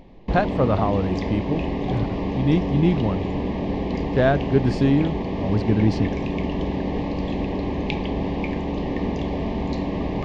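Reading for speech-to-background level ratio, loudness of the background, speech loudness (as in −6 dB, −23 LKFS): 3.0 dB, −26.5 LKFS, −23.5 LKFS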